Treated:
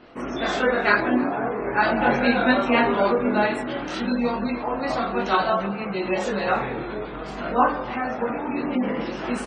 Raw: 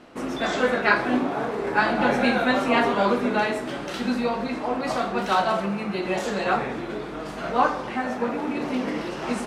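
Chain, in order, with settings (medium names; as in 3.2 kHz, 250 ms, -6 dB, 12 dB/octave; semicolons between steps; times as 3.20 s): chorus voices 4, 0.35 Hz, delay 23 ms, depth 2.1 ms; spectral gate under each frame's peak -30 dB strong; echo from a far wall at 54 m, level -19 dB; trim +4 dB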